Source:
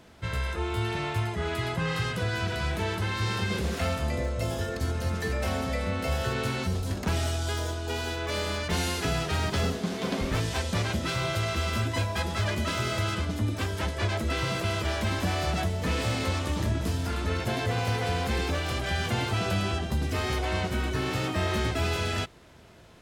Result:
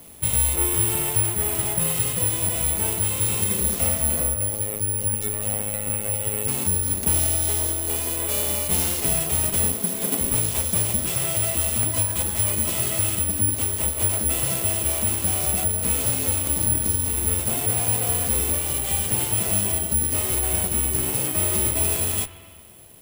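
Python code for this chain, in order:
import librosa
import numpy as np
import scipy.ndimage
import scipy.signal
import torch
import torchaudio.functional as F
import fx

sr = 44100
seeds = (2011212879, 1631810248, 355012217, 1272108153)

y = fx.lower_of_two(x, sr, delay_ms=0.32)
y = fx.rider(y, sr, range_db=10, speed_s=2.0)
y = fx.robotise(y, sr, hz=105.0, at=(4.34, 6.48))
y = (np.kron(y[::4], np.eye(4)[0]) * 4)[:len(y)]
y = fx.echo_wet_bandpass(y, sr, ms=74, feedback_pct=75, hz=1600.0, wet_db=-16)
y = fx.rev_spring(y, sr, rt60_s=2.1, pass_ms=(45, 59), chirp_ms=50, drr_db=15.0)
y = fx.buffer_crackle(y, sr, first_s=0.77, period_s=0.85, block=512, kind='repeat')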